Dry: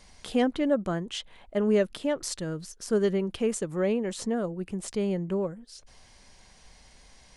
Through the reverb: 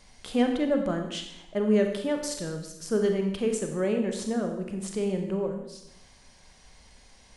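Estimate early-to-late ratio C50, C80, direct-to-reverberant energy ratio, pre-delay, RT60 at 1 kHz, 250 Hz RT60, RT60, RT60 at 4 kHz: 6.0 dB, 8.0 dB, 4.0 dB, 28 ms, 0.80 s, 1.0 s, 0.80 s, 0.75 s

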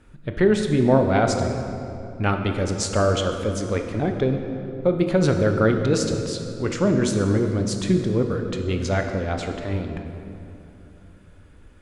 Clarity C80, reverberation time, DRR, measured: 6.5 dB, 2.8 s, 4.5 dB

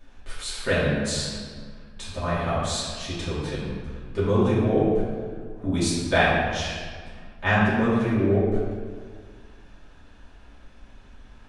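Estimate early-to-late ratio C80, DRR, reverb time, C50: 1.0 dB, -10.0 dB, 1.8 s, -1.0 dB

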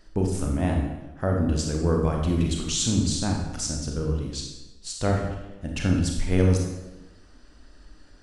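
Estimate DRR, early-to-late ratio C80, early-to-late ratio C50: 0.0 dB, 5.5 dB, 3.0 dB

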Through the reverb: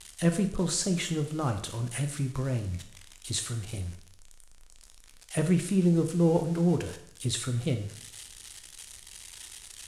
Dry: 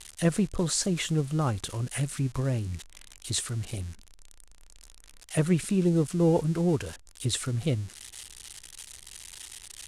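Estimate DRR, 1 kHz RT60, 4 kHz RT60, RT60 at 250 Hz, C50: 6.5 dB, 0.65 s, 0.60 s, 0.70 s, 10.0 dB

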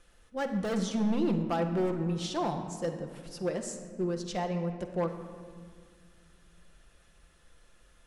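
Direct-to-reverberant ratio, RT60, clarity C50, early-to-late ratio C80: 3.5 dB, 1.9 s, 8.0 dB, 9.0 dB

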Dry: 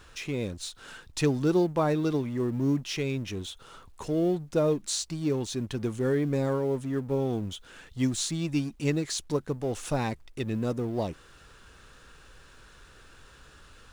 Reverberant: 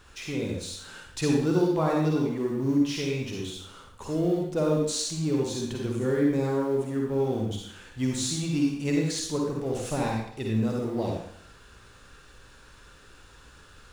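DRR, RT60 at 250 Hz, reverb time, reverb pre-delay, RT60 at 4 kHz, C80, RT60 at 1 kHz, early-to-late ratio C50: -1.0 dB, 0.65 s, 0.65 s, 38 ms, 0.60 s, 4.0 dB, 0.65 s, 0.0 dB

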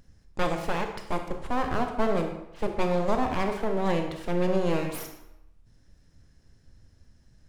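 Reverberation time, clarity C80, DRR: 0.85 s, 9.0 dB, 4.5 dB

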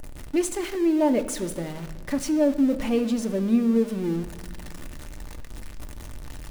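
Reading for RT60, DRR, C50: 1.4 s, 7.0 dB, 13.0 dB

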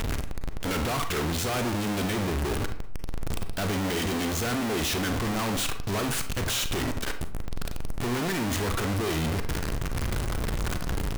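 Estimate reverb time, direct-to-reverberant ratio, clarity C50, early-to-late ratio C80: 0.55 s, 7.0 dB, 10.5 dB, 14.0 dB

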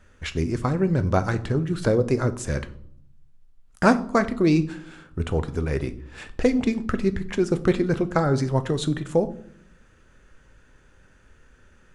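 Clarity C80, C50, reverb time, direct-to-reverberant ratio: 20.5 dB, 16.5 dB, 0.65 s, 10.5 dB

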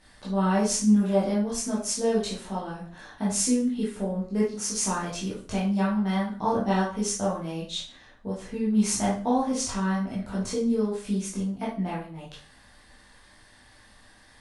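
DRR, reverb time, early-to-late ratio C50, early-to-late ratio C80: -8.0 dB, 0.45 s, 4.0 dB, 10.0 dB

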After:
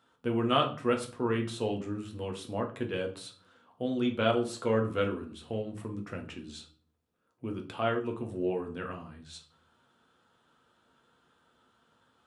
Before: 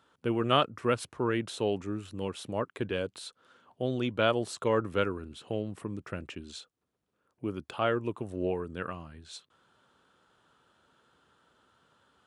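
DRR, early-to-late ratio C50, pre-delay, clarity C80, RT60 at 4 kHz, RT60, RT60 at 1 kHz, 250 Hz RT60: 1.5 dB, 11.5 dB, 4 ms, 17.0 dB, 0.35 s, 0.45 s, 0.45 s, 0.65 s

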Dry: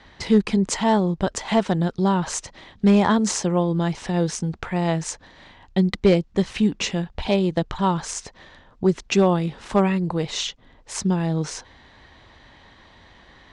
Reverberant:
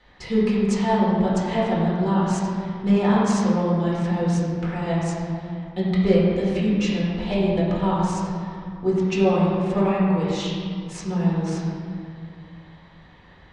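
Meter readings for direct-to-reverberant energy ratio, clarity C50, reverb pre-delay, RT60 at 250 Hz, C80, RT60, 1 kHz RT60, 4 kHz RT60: -8.0 dB, -1.5 dB, 4 ms, 2.6 s, 0.0 dB, 2.2 s, 2.3 s, 1.3 s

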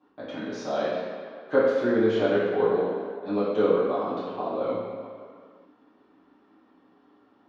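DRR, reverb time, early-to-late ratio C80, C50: -12.5 dB, no single decay rate, 1.0 dB, -1.0 dB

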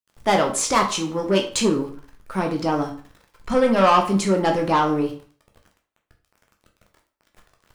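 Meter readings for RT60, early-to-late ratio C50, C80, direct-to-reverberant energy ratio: 0.45 s, 10.0 dB, 14.0 dB, 2.0 dB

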